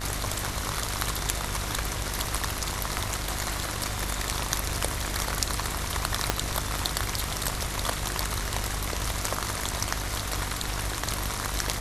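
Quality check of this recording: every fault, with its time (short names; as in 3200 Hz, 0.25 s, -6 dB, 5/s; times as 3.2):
buzz 50 Hz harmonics 36 -35 dBFS
6.3 pop -5 dBFS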